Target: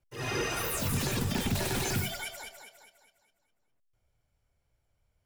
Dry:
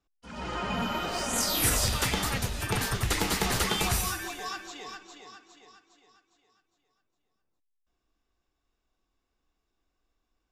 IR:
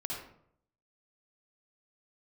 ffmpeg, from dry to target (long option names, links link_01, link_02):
-af "alimiter=limit=-21.5dB:level=0:latency=1:release=45,lowshelf=frequency=210:gain=6.5,asetrate=88200,aresample=44100,volume=-2dB"